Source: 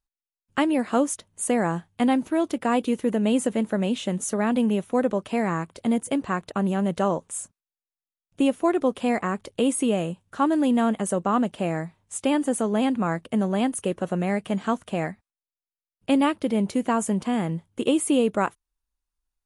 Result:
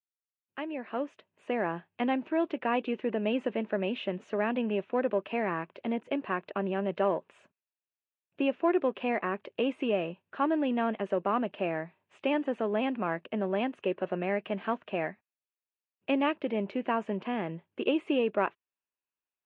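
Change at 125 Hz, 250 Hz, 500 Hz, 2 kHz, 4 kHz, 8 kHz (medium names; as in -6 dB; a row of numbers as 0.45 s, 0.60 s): -11.5 dB, -9.0 dB, -4.0 dB, -3.0 dB, -6.5 dB, under -40 dB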